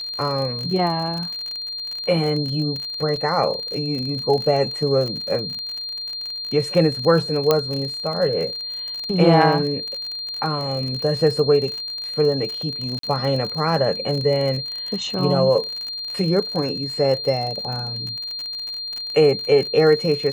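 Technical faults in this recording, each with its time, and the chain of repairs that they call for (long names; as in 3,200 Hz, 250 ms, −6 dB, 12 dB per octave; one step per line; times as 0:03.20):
surface crackle 42 per second −26 dBFS
whistle 4,200 Hz −27 dBFS
0:03.16: drop-out 2.6 ms
0:07.51: click −3 dBFS
0:12.99–0:13.03: drop-out 43 ms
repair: click removal
notch filter 4,200 Hz, Q 30
repair the gap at 0:03.16, 2.6 ms
repair the gap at 0:12.99, 43 ms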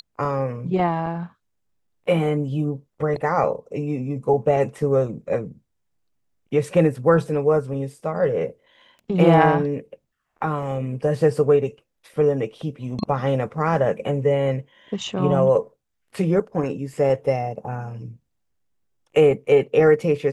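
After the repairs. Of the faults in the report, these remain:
whistle 4,200 Hz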